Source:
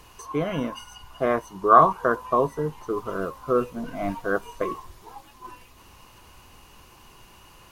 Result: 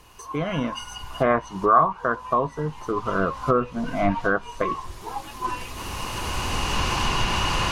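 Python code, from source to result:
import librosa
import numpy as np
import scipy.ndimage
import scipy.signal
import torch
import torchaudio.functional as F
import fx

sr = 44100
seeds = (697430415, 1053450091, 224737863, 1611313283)

y = fx.recorder_agc(x, sr, target_db=-6.0, rise_db_per_s=10.0, max_gain_db=30)
y = fx.env_lowpass_down(y, sr, base_hz=2300.0, full_db=-11.0)
y = fx.dynamic_eq(y, sr, hz=400.0, q=1.2, threshold_db=-31.0, ratio=4.0, max_db=-7)
y = F.gain(torch.from_numpy(y), -1.5).numpy()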